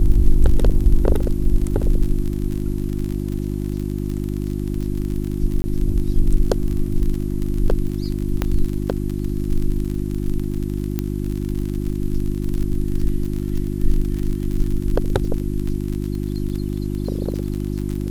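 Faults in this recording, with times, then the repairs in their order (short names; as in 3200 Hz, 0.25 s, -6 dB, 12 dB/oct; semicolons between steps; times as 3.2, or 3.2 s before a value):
crackle 41/s -24 dBFS
hum 50 Hz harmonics 7 -24 dBFS
5.62–5.64 gap 20 ms
8.42 pop -7 dBFS
10.99 pop -9 dBFS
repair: de-click; de-hum 50 Hz, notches 7; interpolate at 5.62, 20 ms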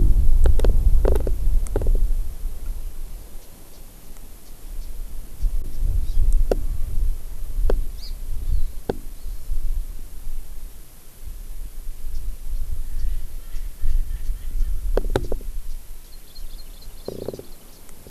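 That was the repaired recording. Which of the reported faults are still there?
none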